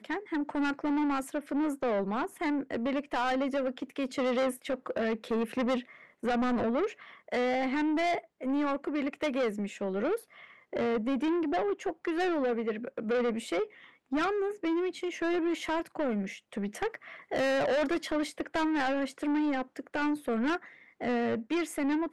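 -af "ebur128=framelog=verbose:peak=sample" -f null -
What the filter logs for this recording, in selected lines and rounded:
Integrated loudness:
  I:         -31.3 LUFS
  Threshold: -41.5 LUFS
Loudness range:
  LRA:         1.4 LU
  Threshold: -51.5 LUFS
  LRA low:   -32.1 LUFS
  LRA high:  -30.7 LUFS
Sample peak:
  Peak:      -25.3 dBFS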